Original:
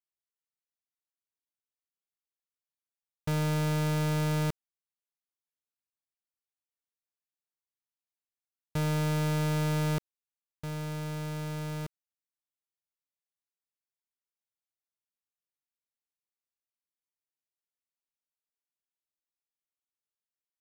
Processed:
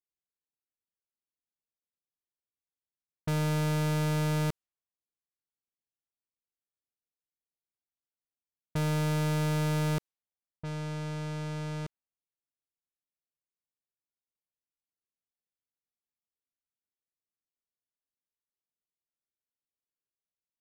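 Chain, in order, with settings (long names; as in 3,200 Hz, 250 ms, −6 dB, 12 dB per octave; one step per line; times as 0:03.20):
low-pass that shuts in the quiet parts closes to 510 Hz, open at −33 dBFS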